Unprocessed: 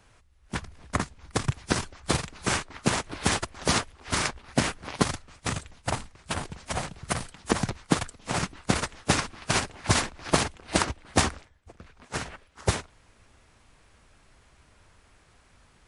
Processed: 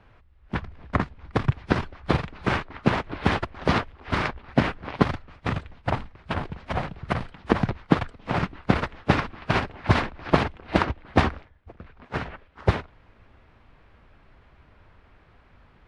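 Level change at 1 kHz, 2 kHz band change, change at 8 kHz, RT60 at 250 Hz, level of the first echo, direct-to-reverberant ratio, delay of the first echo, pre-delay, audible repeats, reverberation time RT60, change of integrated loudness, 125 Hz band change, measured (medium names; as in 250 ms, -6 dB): +3.5 dB, +1.5 dB, -20.5 dB, no reverb, no echo, no reverb, no echo, no reverb, no echo, no reverb, +2.0 dB, +5.0 dB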